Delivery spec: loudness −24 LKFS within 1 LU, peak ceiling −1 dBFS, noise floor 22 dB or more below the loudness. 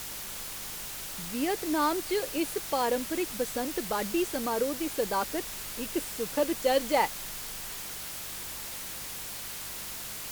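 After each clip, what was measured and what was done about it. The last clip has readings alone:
mains hum 50 Hz; hum harmonics up to 200 Hz; level of the hum −54 dBFS; background noise floor −39 dBFS; target noise floor −54 dBFS; integrated loudness −31.5 LKFS; sample peak −12.5 dBFS; target loudness −24.0 LKFS
→ hum removal 50 Hz, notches 4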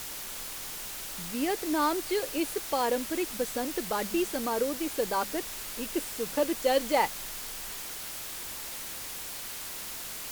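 mains hum none found; background noise floor −39 dBFS; target noise floor −54 dBFS
→ broadband denoise 15 dB, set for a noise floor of −39 dBFS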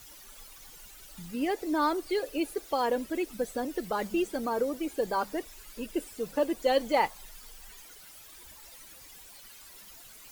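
background noise floor −51 dBFS; target noise floor −53 dBFS
→ broadband denoise 6 dB, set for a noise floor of −51 dBFS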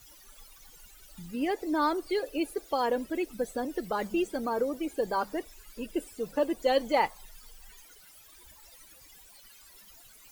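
background noise floor −55 dBFS; integrated loudness −31.0 LKFS; sample peak −13.0 dBFS; target loudness −24.0 LKFS
→ level +7 dB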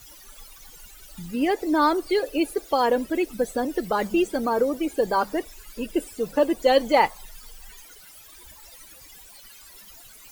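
integrated loudness −24.0 LKFS; sample peak −6.0 dBFS; background noise floor −48 dBFS

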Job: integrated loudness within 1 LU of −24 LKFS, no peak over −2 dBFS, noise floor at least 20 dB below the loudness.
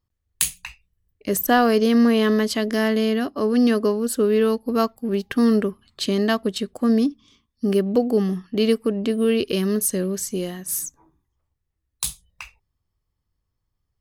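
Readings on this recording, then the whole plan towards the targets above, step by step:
integrated loudness −21.5 LKFS; sample peak −2.5 dBFS; target loudness −24.0 LKFS
→ level −2.5 dB

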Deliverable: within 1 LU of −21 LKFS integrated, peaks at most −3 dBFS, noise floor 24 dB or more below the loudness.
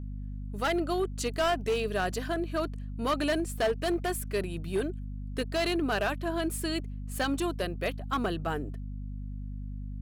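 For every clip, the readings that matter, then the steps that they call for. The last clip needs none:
share of clipped samples 1.5%; peaks flattened at −22.5 dBFS; mains hum 50 Hz; hum harmonics up to 250 Hz; level of the hum −35 dBFS; integrated loudness −31.5 LKFS; sample peak −22.5 dBFS; target loudness −21.0 LKFS
→ clipped peaks rebuilt −22.5 dBFS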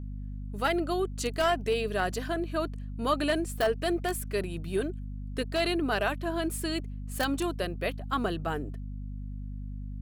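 share of clipped samples 0.0%; mains hum 50 Hz; hum harmonics up to 250 Hz; level of the hum −35 dBFS
→ hum removal 50 Hz, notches 5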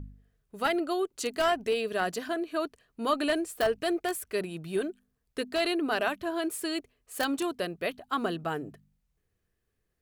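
mains hum none found; integrated loudness −31.0 LKFS; sample peak −13.5 dBFS; target loudness −21.0 LKFS
→ level +10 dB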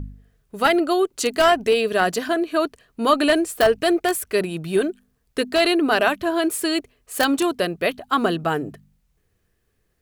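integrated loudness −21.0 LKFS; sample peak −3.5 dBFS; background noise floor −69 dBFS

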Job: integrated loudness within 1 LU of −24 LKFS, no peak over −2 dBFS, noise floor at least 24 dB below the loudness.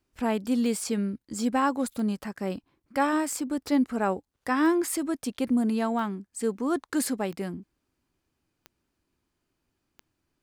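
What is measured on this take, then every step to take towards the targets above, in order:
number of clicks 8; integrated loudness −28.0 LKFS; sample peak −12.5 dBFS; target loudness −24.0 LKFS
→ click removal
level +4 dB

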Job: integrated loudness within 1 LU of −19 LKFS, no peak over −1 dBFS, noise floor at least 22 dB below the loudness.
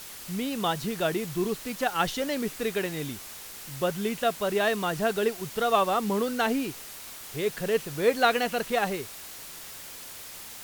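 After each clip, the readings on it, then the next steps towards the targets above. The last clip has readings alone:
background noise floor −43 dBFS; target noise floor −50 dBFS; integrated loudness −28.0 LKFS; sample peak −9.0 dBFS; target loudness −19.0 LKFS
→ broadband denoise 7 dB, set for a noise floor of −43 dBFS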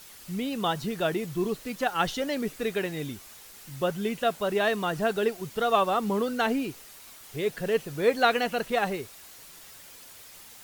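background noise floor −49 dBFS; target noise floor −50 dBFS
→ broadband denoise 6 dB, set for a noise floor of −49 dBFS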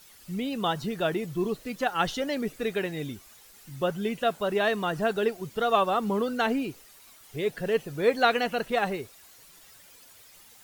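background noise floor −54 dBFS; integrated loudness −28.0 LKFS; sample peak −9.0 dBFS; target loudness −19.0 LKFS
→ level +9 dB
brickwall limiter −1 dBFS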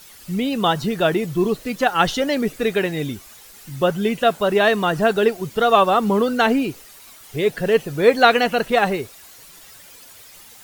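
integrated loudness −19.0 LKFS; sample peak −1.0 dBFS; background noise floor −45 dBFS

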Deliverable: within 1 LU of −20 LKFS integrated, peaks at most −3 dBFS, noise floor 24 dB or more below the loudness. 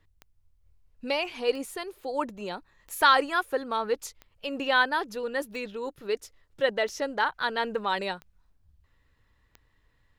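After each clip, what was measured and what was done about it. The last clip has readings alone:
number of clicks 8; integrated loudness −28.5 LKFS; sample peak −9.0 dBFS; target loudness −20.0 LKFS
→ click removal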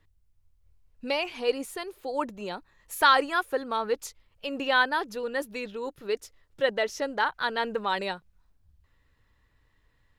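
number of clicks 0; integrated loudness −28.5 LKFS; sample peak −9.0 dBFS; target loudness −20.0 LKFS
→ level +8.5 dB
brickwall limiter −3 dBFS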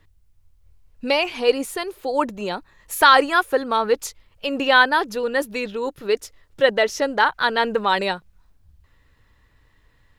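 integrated loudness −20.5 LKFS; sample peak −3.0 dBFS; background noise floor −60 dBFS

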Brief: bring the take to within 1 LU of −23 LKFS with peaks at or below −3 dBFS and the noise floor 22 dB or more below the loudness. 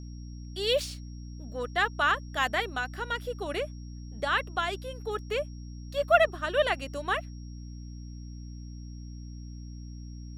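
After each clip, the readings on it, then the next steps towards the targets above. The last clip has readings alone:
mains hum 60 Hz; hum harmonics up to 300 Hz; level of the hum −39 dBFS; interfering tone 5,600 Hz; level of the tone −57 dBFS; integrated loudness −29.5 LKFS; sample peak −8.0 dBFS; target loudness −23.0 LKFS
→ mains-hum notches 60/120/180/240/300 Hz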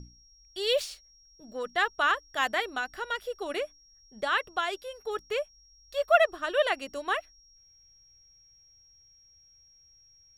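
mains hum none found; interfering tone 5,600 Hz; level of the tone −57 dBFS
→ notch filter 5,600 Hz, Q 30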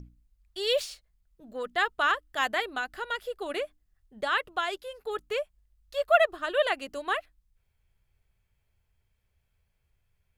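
interfering tone none found; integrated loudness −29.5 LKFS; sample peak −8.0 dBFS; target loudness −23.0 LKFS
→ level +6.5 dB
brickwall limiter −3 dBFS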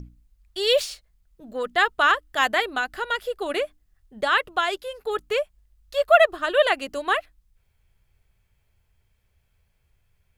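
integrated loudness −23.0 LKFS; sample peak −3.0 dBFS; background noise floor −68 dBFS

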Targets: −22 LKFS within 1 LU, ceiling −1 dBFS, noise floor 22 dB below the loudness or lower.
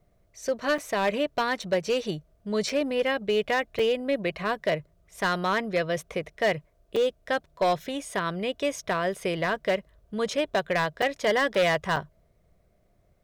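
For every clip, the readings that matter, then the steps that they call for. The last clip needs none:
share of clipped samples 1.2%; peaks flattened at −18.0 dBFS; number of dropouts 7; longest dropout 4.5 ms; integrated loudness −27.5 LKFS; sample peak −18.0 dBFS; target loudness −22.0 LKFS
→ clipped peaks rebuilt −18 dBFS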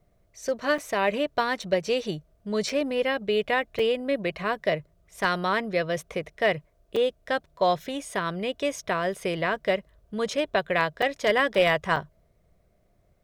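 share of clipped samples 0.0%; number of dropouts 7; longest dropout 4.5 ms
→ repair the gap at 0:00.78/0:01.62/0:02.69/0:03.79/0:06.96/0:11.02/0:11.96, 4.5 ms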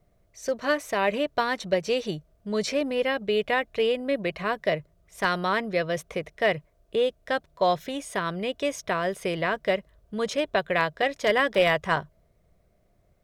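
number of dropouts 0; integrated loudness −27.0 LKFS; sample peak −9.0 dBFS; target loudness −22.0 LKFS
→ level +5 dB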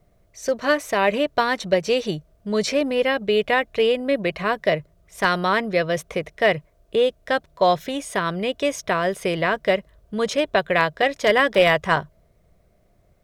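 integrated loudness −22.0 LKFS; sample peak −4.0 dBFS; background noise floor −60 dBFS

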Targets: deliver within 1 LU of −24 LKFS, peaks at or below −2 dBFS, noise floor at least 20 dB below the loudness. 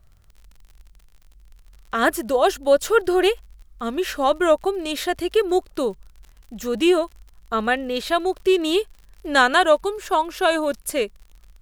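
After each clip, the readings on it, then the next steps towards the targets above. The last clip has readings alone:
crackle rate 50 per second; integrated loudness −21.0 LKFS; sample peak −3.5 dBFS; target loudness −24.0 LKFS
→ click removal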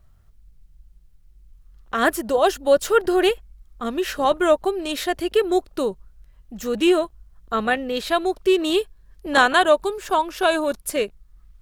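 crackle rate 1.9 per second; integrated loudness −21.0 LKFS; sample peak −3.0 dBFS; target loudness −24.0 LKFS
→ level −3 dB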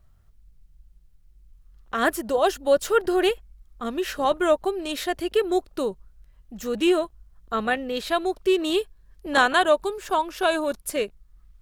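integrated loudness −24.0 LKFS; sample peak −6.0 dBFS; background noise floor −56 dBFS

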